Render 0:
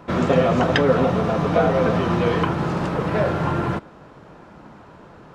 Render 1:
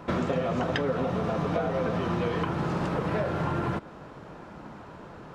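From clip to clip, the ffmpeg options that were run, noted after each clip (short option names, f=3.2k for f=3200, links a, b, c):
-af "acompressor=threshold=-25dB:ratio=6"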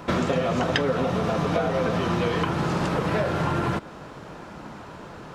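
-af "highshelf=f=2.8k:g=8,volume=3.5dB"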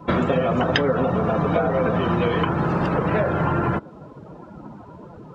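-af "afftdn=nr=19:nf=-35,volume=3.5dB"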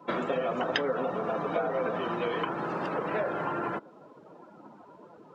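-af "highpass=300,volume=-7.5dB"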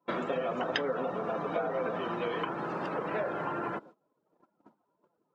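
-af "agate=range=-23dB:threshold=-47dB:ratio=16:detection=peak,volume=-2.5dB"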